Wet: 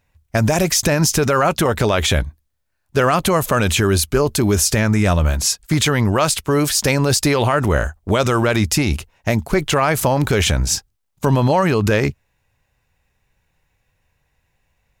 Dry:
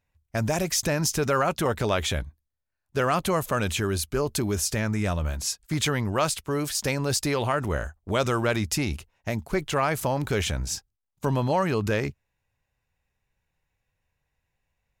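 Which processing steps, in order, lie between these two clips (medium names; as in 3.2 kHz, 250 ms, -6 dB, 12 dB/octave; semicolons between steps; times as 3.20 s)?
loudness maximiser +17 dB; trim -5.5 dB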